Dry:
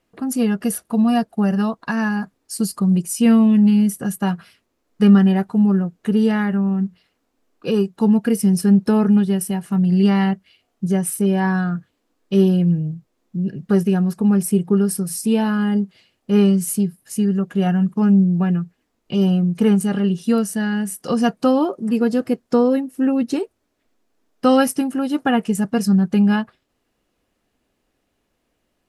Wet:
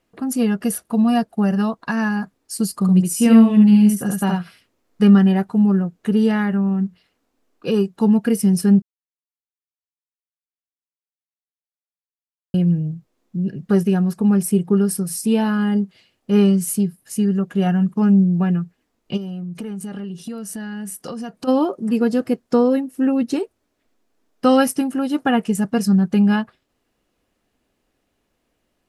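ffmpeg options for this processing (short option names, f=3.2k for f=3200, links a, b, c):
-filter_complex "[0:a]asettb=1/sr,asplit=3[a][b][c];[a]atrim=end=2.744[d];[b]atrim=start=2.74:end=5.03,asetpts=PTS-STARTPTS,afade=t=in:d=0.004:c=qsin,afade=t=out:st=2.286:d=0.004:c=qsin,aecho=1:1:71:0.708,atrim=end_sample=100989[e];[c]atrim=start=5.026[f];[d][e]acrossfade=d=0.004:c1=hsin:c2=qsin[g];[g][f]acrossfade=d=0.004:c1=qsin:c2=hsin,asplit=3[h][i][j];[h]afade=t=out:st=19.16:d=0.02[k];[i]acompressor=threshold=-26dB:ratio=12:attack=3.2:release=140:knee=1:detection=peak,afade=t=in:st=19.16:d=0.02,afade=t=out:st=21.47:d=0.02[l];[j]afade=t=in:st=21.47:d=0.02[m];[k][l][m]amix=inputs=3:normalize=0,asplit=3[n][o][p];[n]atrim=end=8.82,asetpts=PTS-STARTPTS,afade=t=out:st=8.816:d=0.004:c=hsin[q];[o]atrim=start=8.82:end=12.54,asetpts=PTS-STARTPTS,volume=0[r];[p]atrim=start=12.54,asetpts=PTS-STARTPTS,afade=t=in:d=0.004:c=hsin[s];[q][r][s]concat=n=3:v=0:a=1"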